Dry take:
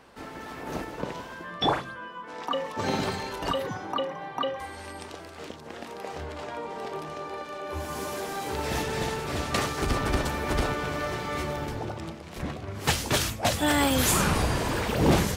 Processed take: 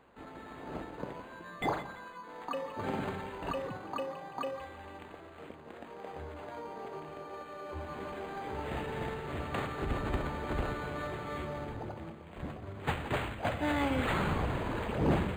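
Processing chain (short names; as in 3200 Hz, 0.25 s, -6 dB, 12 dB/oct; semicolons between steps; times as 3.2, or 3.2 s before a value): split-band echo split 1100 Hz, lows 87 ms, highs 0.169 s, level -13 dB; decimation joined by straight lines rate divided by 8×; gain -7 dB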